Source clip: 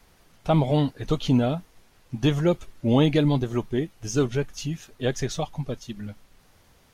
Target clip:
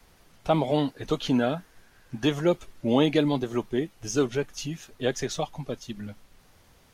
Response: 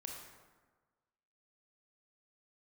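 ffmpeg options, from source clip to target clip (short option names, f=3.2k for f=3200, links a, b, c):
-filter_complex "[0:a]asettb=1/sr,asplit=3[a][b][c];[a]atrim=end=1.204[d];[b]atrim=start=1.2:end=2.25,asetpts=PTS-STARTPTS,afade=t=in:d=0.004:c=qsin,afade=t=out:st=1.046:d=0.004:c=qsin,equalizer=f=1.6k:w=5.3:g=11.5[e];[c]atrim=start=2.246[f];[d][e]acrossfade=d=0.004:c1=hsin:c2=qsin[g];[g][f]acrossfade=d=0.004:c1=qsin:c2=hsin,acrossover=split=200|2800[h][i][j];[h]acompressor=threshold=-39dB:ratio=6[k];[k][i][j]amix=inputs=3:normalize=0"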